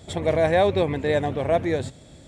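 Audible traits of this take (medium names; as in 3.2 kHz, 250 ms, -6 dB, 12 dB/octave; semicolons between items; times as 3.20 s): noise floor -48 dBFS; spectral tilt -5.0 dB/octave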